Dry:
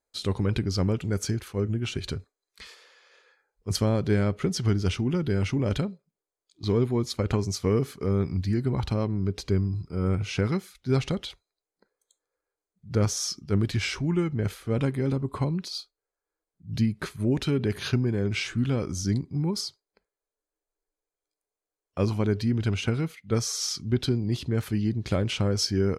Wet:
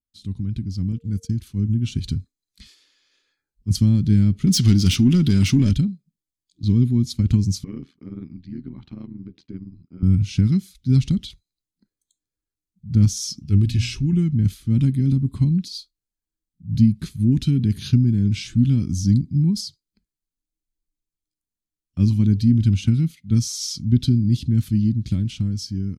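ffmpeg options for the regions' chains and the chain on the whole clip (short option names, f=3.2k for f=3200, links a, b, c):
-filter_complex "[0:a]asettb=1/sr,asplit=3[a][b][c];[a]atrim=end=0.924[d];[b]atrim=start=0.92:end=1.34,asetpts=PTS-STARTPTS,afade=t=in:d=0.004:c=qsin,afade=t=out:st=0.416:d=0.004:c=qsin,agate=range=-21dB:threshold=-32dB:ratio=16:release=100:detection=peak,aeval=exprs='val(0)+0.0282*sin(2*PI*460*n/s)':c=same[e];[c]atrim=start=1.336[f];[d][e]acrossfade=d=0.004:c1=hsin:c2=qsin[g];[g][f]acrossfade=d=0.004:c1=qsin:c2=hsin,asettb=1/sr,asplit=3[h][i][j];[h]atrim=end=4.474[k];[i]atrim=start=4.47:end=5.71,asetpts=PTS-STARTPTS,afade=t=in:d=0.004:c=qsin,afade=t=out:st=1.236:d=0.004:c=qsin,asplit=2[l][m];[m]highpass=f=720:p=1,volume=22dB,asoftclip=type=tanh:threshold=-11dB[n];[l][n]amix=inputs=2:normalize=0,lowpass=f=6.2k:p=1,volume=-6dB,highshelf=f=11k:g=7.5[o];[j]atrim=start=5.706[p];[k][o]acrossfade=d=0.004:c1=hsin:c2=qsin[q];[q][p]acrossfade=d=0.004:c1=qsin:c2=hsin,asettb=1/sr,asplit=3[r][s][t];[r]atrim=end=7.644[u];[s]atrim=start=7.64:end=10.03,asetpts=PTS-STARTPTS,afade=t=in:d=0.004:c=qsin,afade=t=out:st=2.386:d=0.004:c=qsin,agate=range=-33dB:threshold=-41dB:ratio=3:release=100:detection=peak,highpass=380,lowpass=2.4k,tremolo=f=80:d=0.857[v];[t]atrim=start=10.026[w];[u][v]acrossfade=d=0.004:c1=hsin:c2=qsin[x];[x][w]acrossfade=d=0.004:c1=qsin:c2=hsin,asettb=1/sr,asplit=3[y][z][aa];[y]atrim=end=13.404[ab];[z]atrim=start=13.4:end=14.13,asetpts=PTS-STARTPTS,afade=t=in:d=0.004:c=qsin,afade=t=out:st=0.726:d=0.004:c=qsin,equalizer=f=2.6k:w=7.8:g=10,bandreject=f=60:t=h:w=6,bandreject=f=120:t=h:w=6,bandreject=f=180:t=h:w=6,bandreject=f=240:t=h:w=6,aecho=1:1:2.4:0.43,atrim=end_sample=32193[ac];[aa]atrim=start=14.126[ad];[ab][ac]acrossfade=d=0.004:c1=hsin:c2=qsin[ae];[ae][ad]acrossfade=d=0.004:c1=qsin:c2=hsin,firequalizer=gain_entry='entry(240,0);entry(460,-29);entry(3500,-12)':delay=0.05:min_phase=1,dynaudnorm=f=320:g=9:m=10dB,adynamicequalizer=threshold=0.00794:dfrequency=2100:dqfactor=0.7:tfrequency=2100:tqfactor=0.7:attack=5:release=100:ratio=0.375:range=2:mode=boostabove:tftype=highshelf"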